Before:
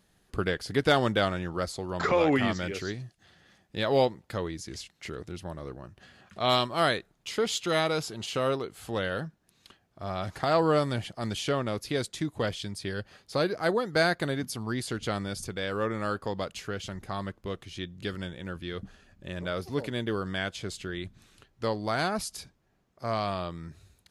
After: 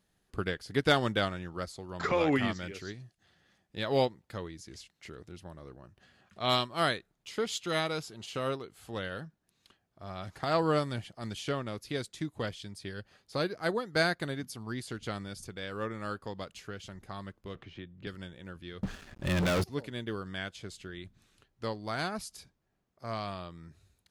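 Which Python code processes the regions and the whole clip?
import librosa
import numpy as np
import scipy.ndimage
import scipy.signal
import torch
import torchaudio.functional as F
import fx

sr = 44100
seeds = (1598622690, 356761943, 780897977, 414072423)

y = fx.chain(x, sr, fx.lowpass(hz=2400.0, slope=12),
    fx.band_squash(depth_pct=70), at=(17.55, 18.07))
y = fx.chain(y, sr, fx.high_shelf(hz=8500.0, db=-5.5),
    fx.leveller(passes=5), at=(18.83, 19.64))
y = fx.dynamic_eq(y, sr, hz=610.0, q=0.87, threshold_db=-39.0, ratio=4.0, max_db=-3)
y = fx.upward_expand(y, sr, threshold_db=-37.0, expansion=1.5)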